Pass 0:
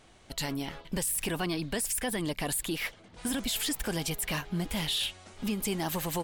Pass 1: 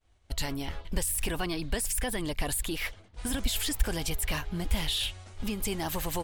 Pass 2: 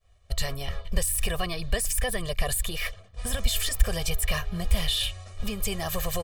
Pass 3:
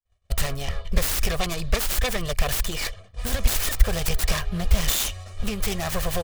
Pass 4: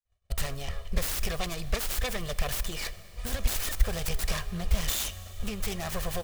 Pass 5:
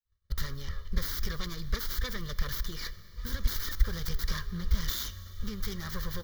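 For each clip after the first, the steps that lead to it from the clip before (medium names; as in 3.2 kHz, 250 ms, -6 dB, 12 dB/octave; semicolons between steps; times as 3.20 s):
expander -47 dBFS; resonant low shelf 110 Hz +12 dB, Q 1.5
comb 1.7 ms, depth 99%
self-modulated delay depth 0.86 ms; expander -49 dBFS; trim +4 dB
Schroeder reverb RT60 3.3 s, combs from 30 ms, DRR 16 dB; trim -6.5 dB
static phaser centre 2.6 kHz, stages 6; trim -1 dB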